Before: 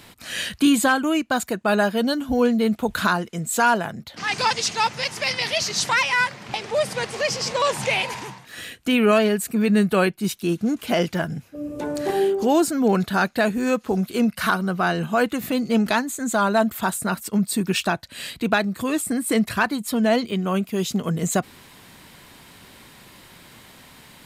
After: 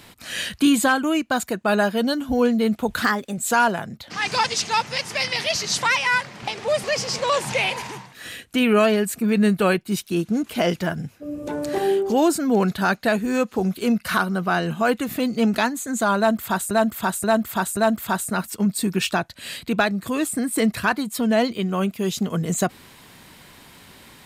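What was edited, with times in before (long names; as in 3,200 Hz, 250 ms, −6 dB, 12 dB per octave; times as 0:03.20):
0:03.02–0:03.44: play speed 118%
0:06.90–0:07.16: remove
0:16.50–0:17.03: repeat, 4 plays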